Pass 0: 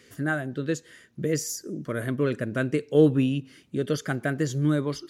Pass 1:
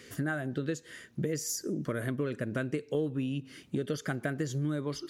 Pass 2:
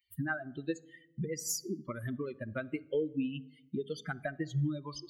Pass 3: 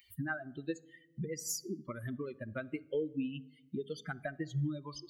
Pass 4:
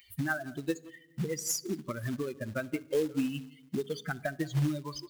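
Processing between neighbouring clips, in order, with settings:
compression 6:1, threshold -33 dBFS, peak gain reduction 18.5 dB; trim +3.5 dB
expander on every frequency bin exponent 3; on a send at -20.5 dB: reverberation RT60 0.90 s, pre-delay 25 ms; on the sum: trim +3.5 dB
upward compressor, threshold -50 dBFS; trim -2.5 dB
speakerphone echo 170 ms, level -18 dB; short-mantissa float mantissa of 2-bit; trim +5.5 dB

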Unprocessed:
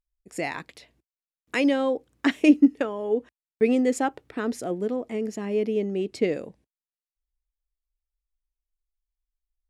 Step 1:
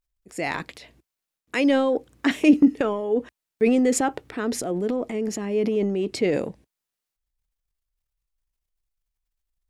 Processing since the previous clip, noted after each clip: transient shaper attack -2 dB, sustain +8 dB; trim +2 dB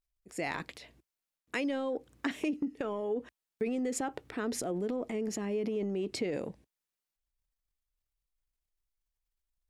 compression 10:1, threshold -24 dBFS, peak gain reduction 14.5 dB; trim -5.5 dB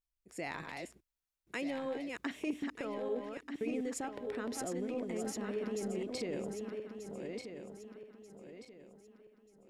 backward echo that repeats 618 ms, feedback 59%, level -4 dB; trim -5.5 dB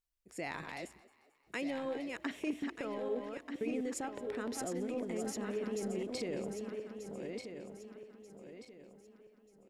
frequency-shifting echo 221 ms, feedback 54%, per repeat +46 Hz, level -21 dB

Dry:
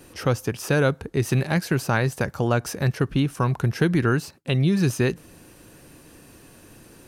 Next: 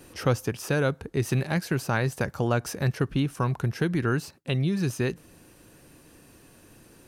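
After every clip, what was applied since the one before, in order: gain riding 0.5 s; trim -4 dB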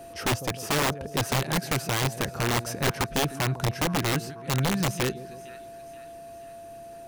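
whistle 680 Hz -42 dBFS; two-band feedback delay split 800 Hz, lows 151 ms, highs 479 ms, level -15.5 dB; integer overflow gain 19 dB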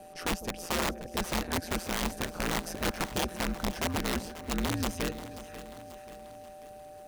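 ring modulator 86 Hz; bit-crushed delay 537 ms, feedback 55%, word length 9-bit, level -14.5 dB; trim -2.5 dB

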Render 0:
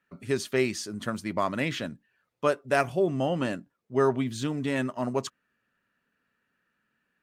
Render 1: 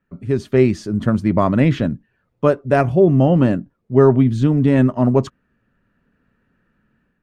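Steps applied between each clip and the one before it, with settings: tilt EQ -4 dB/octave; level rider gain up to 8 dB; trim +1 dB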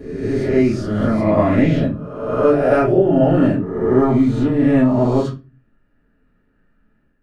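reverse spectral sustain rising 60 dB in 1.12 s; reverberation RT60 0.30 s, pre-delay 3 ms, DRR -6 dB; trim -14.5 dB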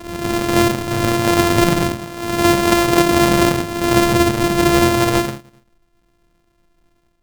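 sorted samples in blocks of 128 samples

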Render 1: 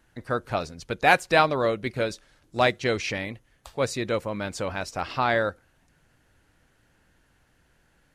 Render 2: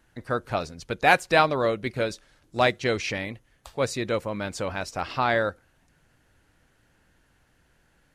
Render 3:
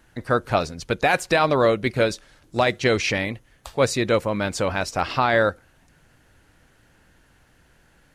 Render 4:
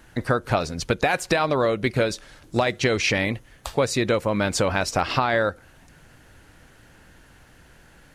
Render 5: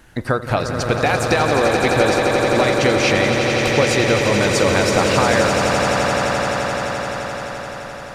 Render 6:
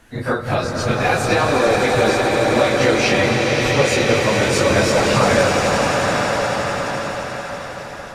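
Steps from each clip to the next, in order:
no audible change
peak limiter -14.5 dBFS, peak gain reduction 11 dB; trim +6.5 dB
compression 6:1, threshold -24 dBFS, peak gain reduction 10.5 dB; trim +6 dB
echo with a slow build-up 86 ms, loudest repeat 8, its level -8 dB; trim +2.5 dB
phase randomisation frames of 100 ms

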